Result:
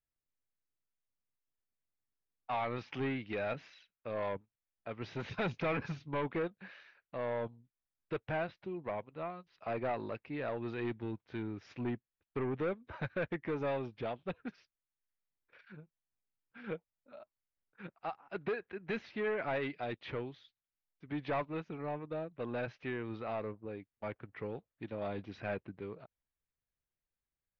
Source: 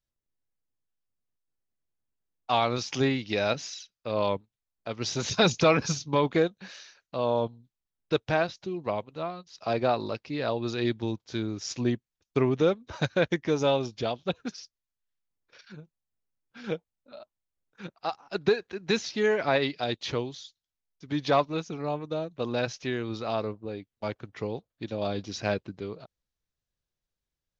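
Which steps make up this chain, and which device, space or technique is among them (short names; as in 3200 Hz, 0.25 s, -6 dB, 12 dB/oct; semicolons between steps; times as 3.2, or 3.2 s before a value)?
overdriven synthesiser ladder filter (soft clip -23.5 dBFS, distortion -10 dB; ladder low-pass 2800 Hz, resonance 30%)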